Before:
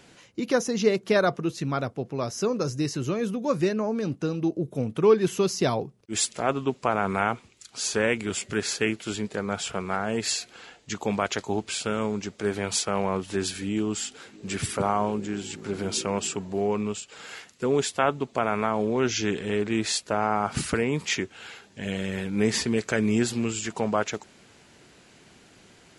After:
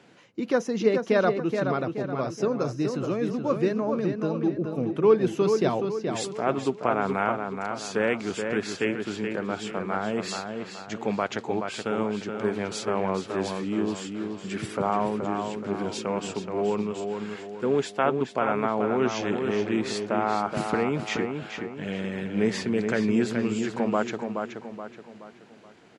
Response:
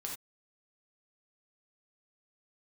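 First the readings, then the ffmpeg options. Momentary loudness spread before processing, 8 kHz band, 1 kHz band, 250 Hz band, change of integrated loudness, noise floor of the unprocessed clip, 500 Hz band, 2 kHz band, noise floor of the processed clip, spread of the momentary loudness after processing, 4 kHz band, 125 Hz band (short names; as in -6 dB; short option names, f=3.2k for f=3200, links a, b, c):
9 LU, -10.5 dB, +0.5 dB, +0.5 dB, -0.5 dB, -55 dBFS, +1.0 dB, -1.5 dB, -47 dBFS, 9 LU, -6.0 dB, -2.0 dB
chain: -filter_complex "[0:a]highpass=140,aemphasis=mode=reproduction:type=75kf,asplit=2[a][b];[b]adelay=425,lowpass=f=4k:p=1,volume=-5.5dB,asplit=2[c][d];[d]adelay=425,lowpass=f=4k:p=1,volume=0.43,asplit=2[e][f];[f]adelay=425,lowpass=f=4k:p=1,volume=0.43,asplit=2[g][h];[h]adelay=425,lowpass=f=4k:p=1,volume=0.43,asplit=2[i][j];[j]adelay=425,lowpass=f=4k:p=1,volume=0.43[k];[a][c][e][g][i][k]amix=inputs=6:normalize=0"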